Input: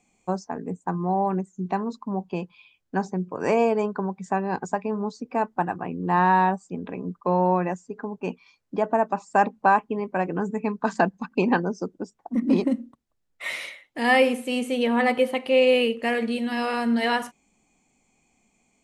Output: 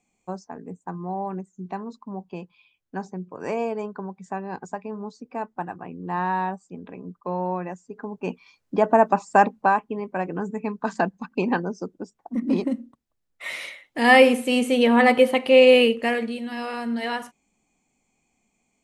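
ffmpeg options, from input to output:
-af "volume=13dB,afade=t=in:st=7.74:d=1.38:silence=0.251189,afade=t=out:st=9.12:d=0.63:silence=0.398107,afade=t=in:st=13.48:d=0.66:silence=0.446684,afade=t=out:st=15.82:d=0.53:silence=0.334965"

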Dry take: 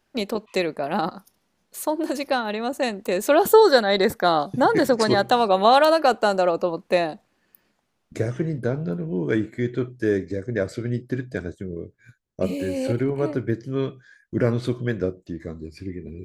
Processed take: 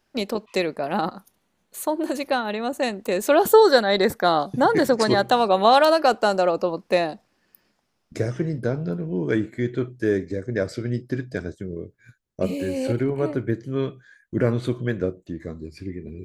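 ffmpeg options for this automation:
-af "asetnsamples=n=441:p=0,asendcmd='0.91 equalizer g -7.5;2.78 equalizer g 0;5.67 equalizer g 7.5;9.32 equalizer g -1;10.51 equalizer g 7;11.76 equalizer g 0.5;13.12 equalizer g -9;15.43 equalizer g 0',equalizer=f=5.2k:t=o:w=0.24:g=4"

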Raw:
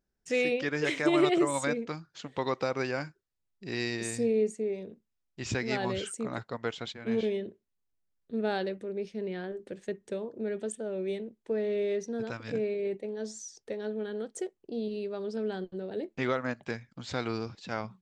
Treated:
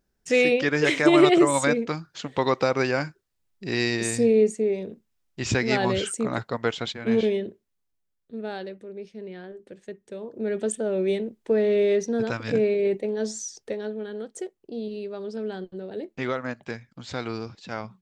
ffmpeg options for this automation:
-af "volume=20dB,afade=t=out:st=7.05:d=1.33:silence=0.281838,afade=t=in:st=10.13:d=0.58:silence=0.251189,afade=t=out:st=13.46:d=0.49:silence=0.421697"

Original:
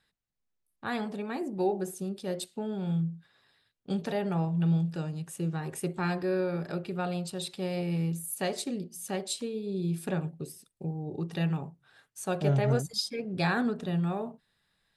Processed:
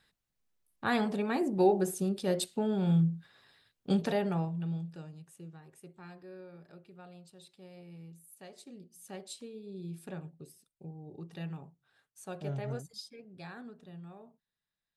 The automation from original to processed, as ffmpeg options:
-af "volume=12dB,afade=t=out:st=3.9:d=0.71:silence=0.237137,afade=t=out:st=4.61:d=1.05:silence=0.298538,afade=t=in:st=8.52:d=0.64:silence=0.375837,afade=t=out:st=12.67:d=0.68:silence=0.421697"

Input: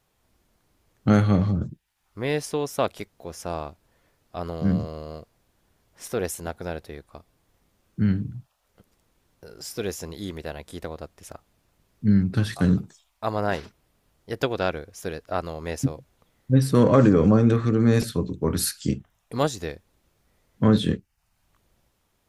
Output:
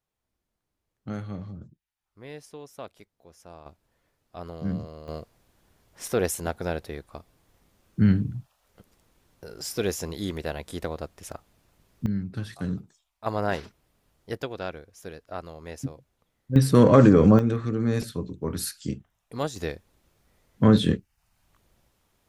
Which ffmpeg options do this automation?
-af "asetnsamples=n=441:p=0,asendcmd='3.66 volume volume -7dB;5.08 volume volume 2.5dB;12.06 volume volume -10dB;13.26 volume volume -1.5dB;14.37 volume volume -8.5dB;16.56 volume volume 1.5dB;17.39 volume volume -6dB;19.56 volume volume 1dB',volume=-16dB"

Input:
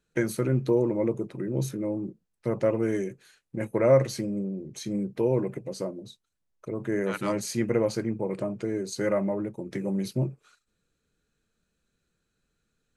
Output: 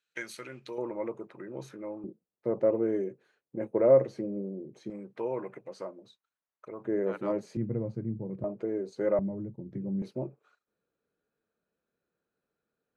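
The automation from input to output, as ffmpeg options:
-af "asetnsamples=n=441:p=0,asendcmd='0.78 bandpass f 1200;2.04 bandpass f 470;4.9 bandpass f 1200;6.85 bandpass f 470;7.57 bandpass f 120;8.44 bandpass f 530;9.19 bandpass f 120;10.02 bandpass f 630',bandpass=f=3k:t=q:w=0.99:csg=0"

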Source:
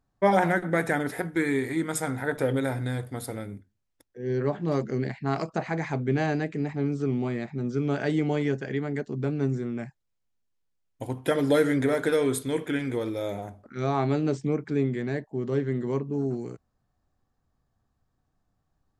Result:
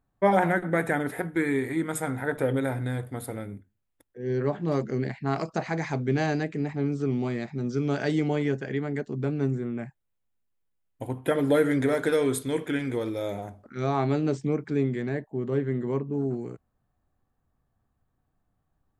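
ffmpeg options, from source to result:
-af "asetnsamples=n=441:p=0,asendcmd='4.21 equalizer g -1.5;5.45 equalizer g 6;6.43 equalizer g 0;7.11 equalizer g 6;8.28 equalizer g -2.5;9.51 equalizer g -12.5;11.71 equalizer g -1;15.09 equalizer g -12',equalizer=f=5.3k:t=o:w=0.84:g=-10"

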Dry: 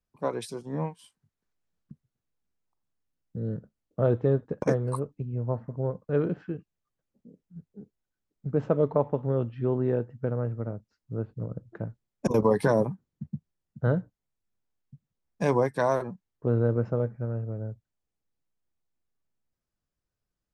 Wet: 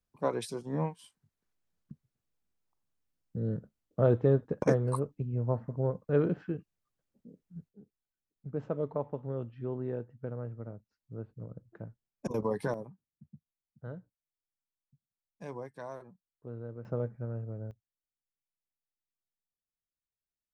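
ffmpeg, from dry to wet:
-af "asetnsamples=n=441:p=0,asendcmd='7.69 volume volume -9.5dB;12.74 volume volume -18dB;16.85 volume volume -6dB;17.71 volume volume -17.5dB',volume=-1dB"

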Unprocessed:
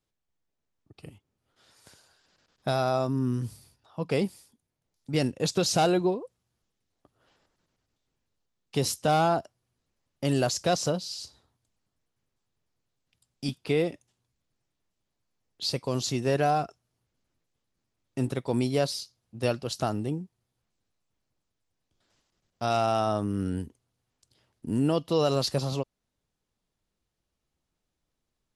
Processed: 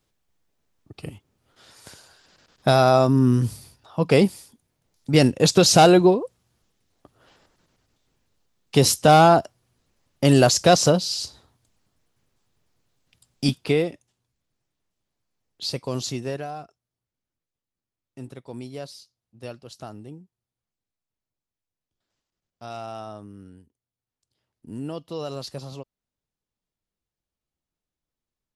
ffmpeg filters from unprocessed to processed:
-af "volume=22dB,afade=t=out:st=13.47:d=0.4:silence=0.354813,afade=t=out:st=16.05:d=0.42:silence=0.281838,afade=t=out:st=22.99:d=0.65:silence=0.334965,afade=t=in:st=23.64:d=1.16:silence=0.251189"

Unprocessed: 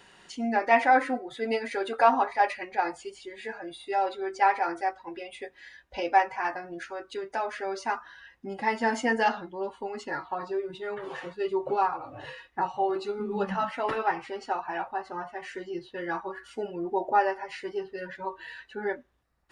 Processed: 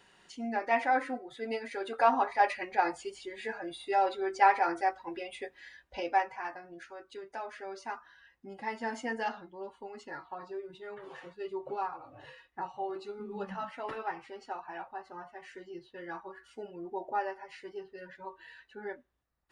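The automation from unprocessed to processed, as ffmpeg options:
-af "volume=-0.5dB,afade=t=in:st=1.76:d=0.93:silence=0.473151,afade=t=out:st=5.27:d=1.23:silence=0.354813"

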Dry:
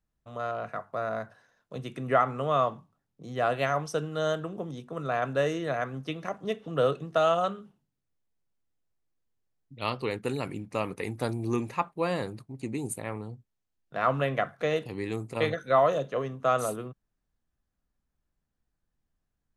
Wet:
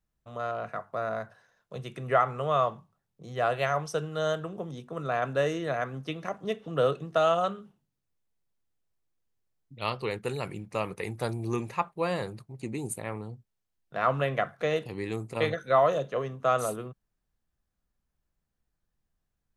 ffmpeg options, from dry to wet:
-af "asetnsamples=n=441:p=0,asendcmd='1.14 equalizer g -12;4.71 equalizer g -3;9.78 equalizer g -12;12.6 equalizer g -4.5',equalizer=f=270:t=o:w=0.28:g=-2.5"

